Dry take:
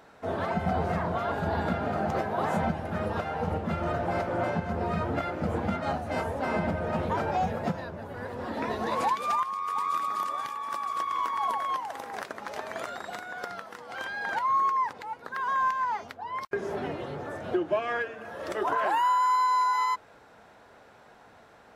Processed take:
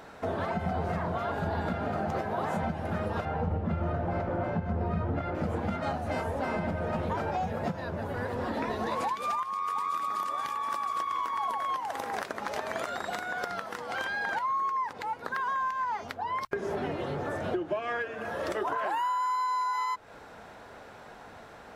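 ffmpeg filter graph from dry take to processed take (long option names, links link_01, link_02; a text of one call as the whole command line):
ffmpeg -i in.wav -filter_complex "[0:a]asettb=1/sr,asplit=3[link_01][link_02][link_03];[link_01]atrim=end=3.254[link_04];[link_02]atrim=start=3.25:end=5.35,asetpts=PTS-STARTPTS,afade=type=in:duration=0.004:curve=qsin,afade=type=out:start_time=2.096:duration=0.004:curve=qsin,lowpass=frequency=2000:poles=1,lowshelf=frequency=180:gain=7.5[link_05];[link_03]atrim=start=5.346[link_06];[link_04][link_05]acrossfade=duration=0.004:curve1=hsin:curve2=qsin[link_07];[link_07][link_06]acrossfade=duration=0.004:curve1=qsin:curve2=hsin,acompressor=threshold=-36dB:ratio=4,lowshelf=frequency=65:gain=7,bandreject=frequency=60:width_type=h:width=6,bandreject=frequency=120:width_type=h:width=6,volume=6dB" out.wav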